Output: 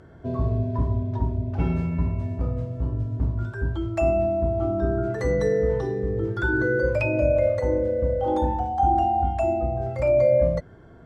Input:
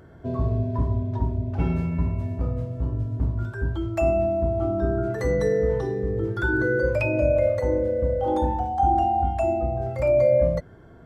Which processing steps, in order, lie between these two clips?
LPF 9000 Hz 12 dB/oct

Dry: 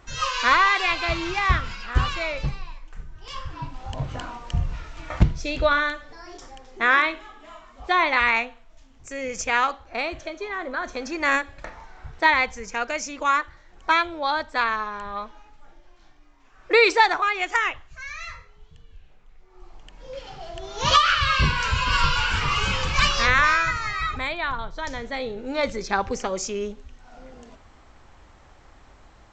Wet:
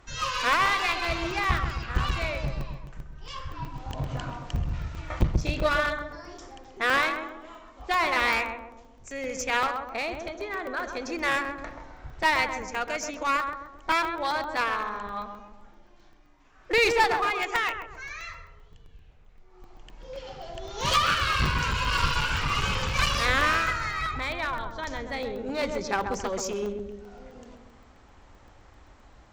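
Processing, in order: darkening echo 0.132 s, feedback 57%, low-pass 870 Hz, level -4 dB; one-sided clip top -22.5 dBFS; crackling interface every 0.13 s, samples 64, zero, from 0.53; gain -3 dB

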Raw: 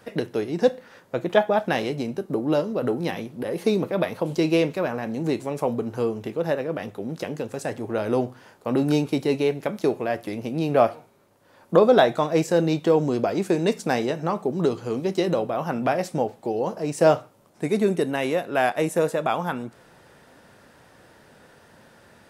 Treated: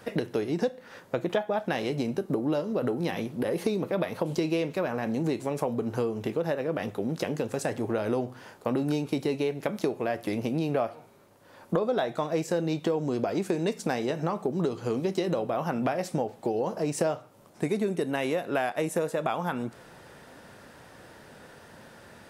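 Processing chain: compressor 6:1, threshold -27 dBFS, peak gain reduction 15.5 dB; gain +2.5 dB

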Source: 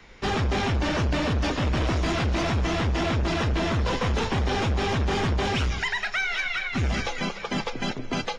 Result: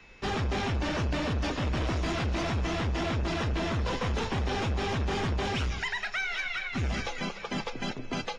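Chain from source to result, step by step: whine 2600 Hz -51 dBFS; gain -5 dB

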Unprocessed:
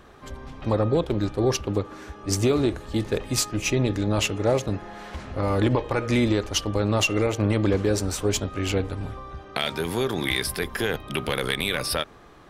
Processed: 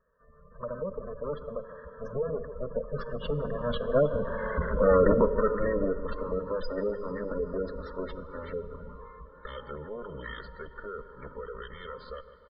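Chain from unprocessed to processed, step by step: minimum comb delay 2 ms; Doppler pass-by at 4.69, 40 m/s, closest 15 m; LPF 3400 Hz 24 dB/oct; fixed phaser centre 510 Hz, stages 8; on a send: feedback echo 0.151 s, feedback 52%, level -15 dB; on the sum: spectral gate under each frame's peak -20 dB strong; in parallel at -3 dB: compressor, threshold -48 dBFS, peak gain reduction 18.5 dB; on the sum: plate-style reverb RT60 4.3 s, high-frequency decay 0.85×, DRR 17 dB; AGC gain up to 12.5 dB; dynamic EQ 990 Hz, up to -4 dB, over -35 dBFS, Q 1.1; gain -1 dB

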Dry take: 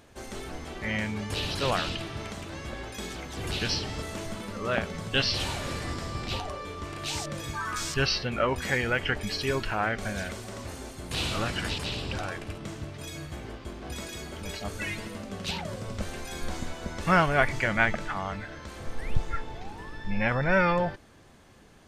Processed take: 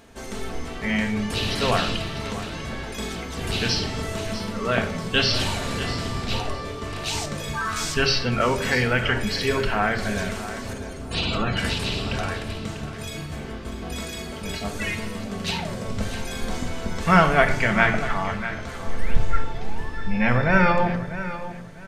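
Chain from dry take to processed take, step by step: 10.73–11.57 spectral gate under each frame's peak -20 dB strong; feedback echo 0.645 s, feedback 25%, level -13 dB; reverb RT60 0.70 s, pre-delay 4 ms, DRR 4.5 dB; gain +4 dB

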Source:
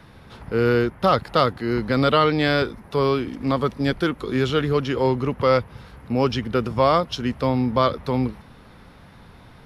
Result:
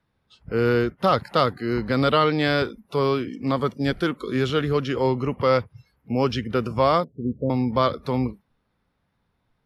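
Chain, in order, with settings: 7.04–7.5 steep low-pass 570 Hz 36 dB/oct; spectral noise reduction 24 dB; gain -1.5 dB

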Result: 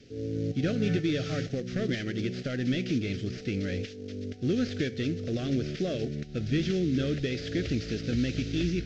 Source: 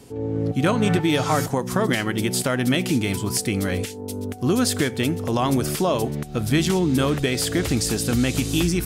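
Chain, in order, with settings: CVSD 32 kbps; Butterworth band-stop 950 Hz, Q 0.9; gain -6.5 dB

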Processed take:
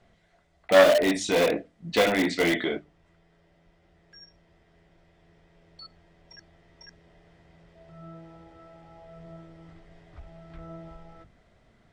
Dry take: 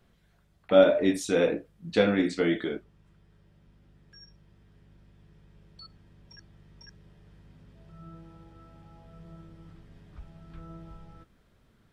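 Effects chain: LPF 8600 Hz 24 dB/oct; notches 50/100/150/200/250/300 Hz; small resonant body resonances 680/2000 Hz, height 10 dB, ringing for 20 ms; in parallel at -10 dB: wrapped overs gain 18 dB; on the sum: dynamic EQ 3200 Hz, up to +6 dB, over -45 dBFS, Q 1; core saturation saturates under 1200 Hz

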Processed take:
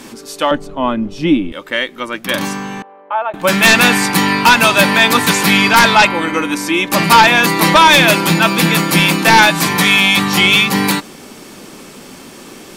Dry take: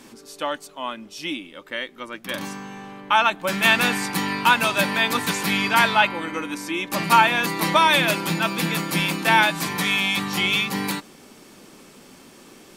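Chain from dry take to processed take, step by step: 2.82–3.34 ladder band-pass 670 Hz, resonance 50%; sine folder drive 8 dB, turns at -2 dBFS; 0.51–1.52 tilt -4.5 dB/oct

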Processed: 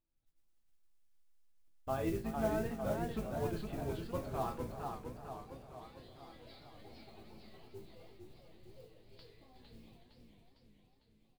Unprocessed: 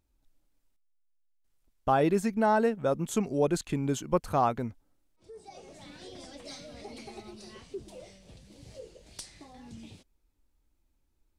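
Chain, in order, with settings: octaver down 2 oct, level +3 dB; steep low-pass 4800 Hz 96 dB/oct; resonator bank A2 minor, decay 0.28 s; modulation noise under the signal 21 dB; echo 0.367 s -13.5 dB; warbling echo 0.456 s, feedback 58%, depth 160 cents, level -5 dB

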